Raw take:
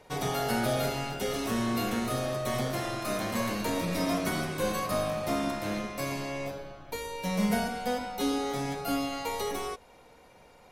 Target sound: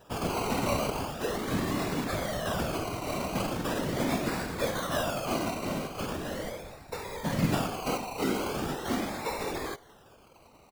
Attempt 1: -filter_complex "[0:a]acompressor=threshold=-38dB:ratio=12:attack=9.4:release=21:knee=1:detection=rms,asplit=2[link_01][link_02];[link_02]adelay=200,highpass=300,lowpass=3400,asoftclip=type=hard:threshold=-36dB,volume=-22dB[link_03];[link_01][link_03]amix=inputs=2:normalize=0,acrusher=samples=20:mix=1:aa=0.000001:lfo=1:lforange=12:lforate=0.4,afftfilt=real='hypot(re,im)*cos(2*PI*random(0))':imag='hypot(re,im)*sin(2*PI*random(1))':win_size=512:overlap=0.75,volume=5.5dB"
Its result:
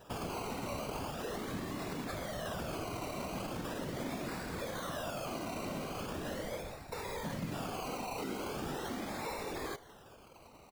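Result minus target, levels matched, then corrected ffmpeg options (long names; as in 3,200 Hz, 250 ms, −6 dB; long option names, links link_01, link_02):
downward compressor: peak gain reduction +15 dB
-filter_complex "[0:a]asplit=2[link_01][link_02];[link_02]adelay=200,highpass=300,lowpass=3400,asoftclip=type=hard:threshold=-36dB,volume=-22dB[link_03];[link_01][link_03]amix=inputs=2:normalize=0,acrusher=samples=20:mix=1:aa=0.000001:lfo=1:lforange=12:lforate=0.4,afftfilt=real='hypot(re,im)*cos(2*PI*random(0))':imag='hypot(re,im)*sin(2*PI*random(1))':win_size=512:overlap=0.75,volume=5.5dB"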